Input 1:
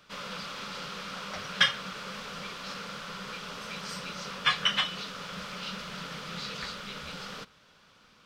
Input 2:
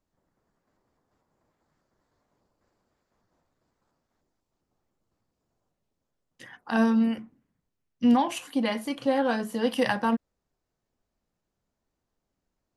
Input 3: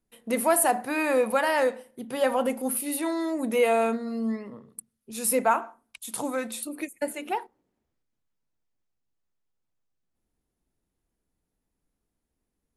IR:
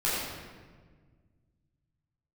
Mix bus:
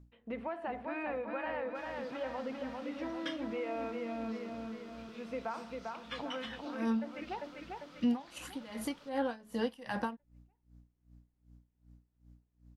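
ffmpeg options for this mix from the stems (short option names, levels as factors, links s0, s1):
-filter_complex "[0:a]adelay=1650,volume=0.119[s0];[1:a]aeval=exprs='val(0)+0.00178*(sin(2*PI*60*n/s)+sin(2*PI*2*60*n/s)/2+sin(2*PI*3*60*n/s)/3+sin(2*PI*4*60*n/s)/4+sin(2*PI*5*60*n/s)/5)':c=same,aeval=exprs='val(0)*pow(10,-25*(0.5-0.5*cos(2*PI*2.6*n/s))/20)':c=same,volume=1.06[s1];[2:a]lowpass=f=3000:w=0.5412,lowpass=f=3000:w=1.3066,acompressor=threshold=0.0447:ratio=2.5,volume=0.335,asplit=2[s2][s3];[s3]volume=0.596,aecho=0:1:397|794|1191|1588|1985|2382|2779|3176:1|0.54|0.292|0.157|0.085|0.0459|0.0248|0.0134[s4];[s0][s1][s2][s4]amix=inputs=4:normalize=0,acompressor=threshold=0.02:ratio=2"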